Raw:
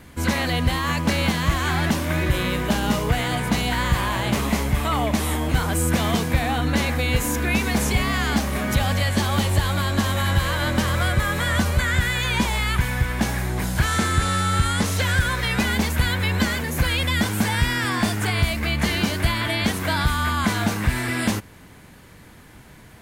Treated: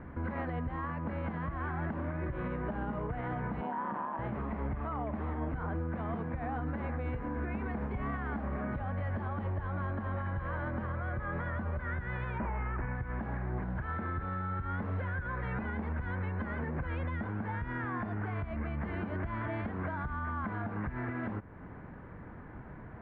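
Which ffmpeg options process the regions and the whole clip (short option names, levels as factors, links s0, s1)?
-filter_complex "[0:a]asettb=1/sr,asplit=3[s0][s1][s2];[s0]atrim=end=3.614[s3];[s1]atrim=start=3.61:end=4.19,asetpts=PTS-STARTPTS,afade=t=in:d=0.004:c=qsin,afade=t=out:st=0.576:d=0.004:c=qsin,tremolo=f=150:d=0.71,highpass=f=190:w=0.5412,highpass=f=190:w=1.3066,equalizer=f=210:t=q:w=4:g=4,equalizer=f=660:t=q:w=4:g=4,equalizer=f=940:t=q:w=4:g=9,equalizer=f=2100:t=q:w=4:g=-6,lowpass=f=3600:w=0.5412,lowpass=f=3600:w=1.3066[s4];[s2]atrim=start=4.186[s5];[s3][s4]acrossfade=d=0.004:c1=hsin:c2=qsin[s6];[s6][s5]acrossfade=d=0.004:c1=qsin:c2=hsin,asettb=1/sr,asplit=3[s7][s8][s9];[s7]atrim=end=12.384[s10];[s8]atrim=start=12.38:end=12.95,asetpts=PTS-STARTPTS,afade=t=in:d=0.004:c=qsin,afade=t=out:st=0.566:d=0.004:c=qsin,aeval=exprs='0.158*(abs(mod(val(0)/0.158+3,4)-2)-1)':c=same,asuperstop=centerf=5100:order=8:qfactor=0.84[s11];[s9]atrim=start=12.946[s12];[s10][s11]acrossfade=d=0.004:c1=hsin:c2=qsin[s13];[s13][s12]acrossfade=d=0.004:c1=qsin:c2=hsin,lowpass=f=1600:w=0.5412,lowpass=f=1600:w=1.3066,acompressor=threshold=0.0794:ratio=6,alimiter=level_in=1.5:limit=0.0631:level=0:latency=1:release=280,volume=0.668"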